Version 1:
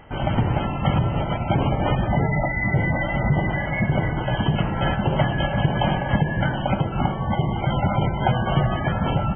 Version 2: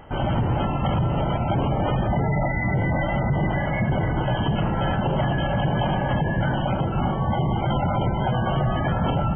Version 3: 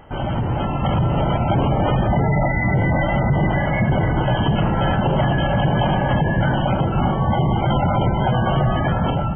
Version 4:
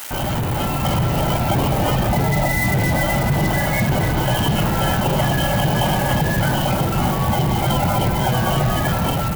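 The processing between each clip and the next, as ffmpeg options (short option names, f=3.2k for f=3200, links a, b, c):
-af "equalizer=f=2.2k:t=o:w=0.83:g=-6.5,bandreject=f=50.57:t=h:w=4,bandreject=f=101.14:t=h:w=4,bandreject=f=151.71:t=h:w=4,bandreject=f=202.28:t=h:w=4,bandreject=f=252.85:t=h:w=4,bandreject=f=303.42:t=h:w=4,bandreject=f=353.99:t=h:w=4,bandreject=f=404.56:t=h:w=4,bandreject=f=455.13:t=h:w=4,alimiter=limit=-18dB:level=0:latency=1:release=14,volume=3dB"
-af "dynaudnorm=f=320:g=5:m=4.5dB"
-af "aeval=exprs='val(0)+0.5*0.0376*sgn(val(0))':c=same,aemphasis=mode=production:type=75fm,acrusher=bits=3:mix=0:aa=0.5,volume=-1dB"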